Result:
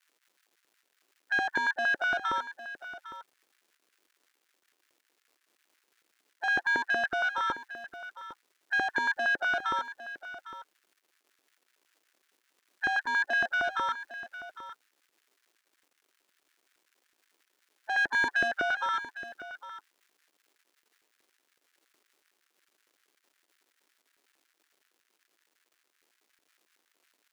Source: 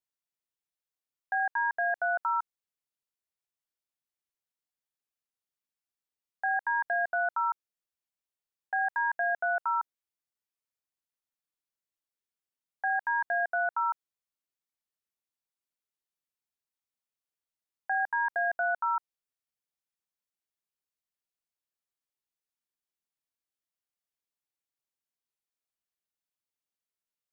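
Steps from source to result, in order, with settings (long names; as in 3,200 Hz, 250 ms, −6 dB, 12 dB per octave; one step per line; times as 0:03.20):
spectral magnitudes quantised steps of 30 dB
0:17.97–0:18.48: parametric band 1,400 Hz +2.5 dB 3 octaves
in parallel at −2 dB: brickwall limiter −28 dBFS, peak gain reduction 8.5 dB
on the sum: soft clipping −27 dBFS, distortion −12 dB
surface crackle 360 per second −57 dBFS
auto-filter high-pass square 5.4 Hz 340–1,600 Hz
on a send: single-tap delay 806 ms −14 dB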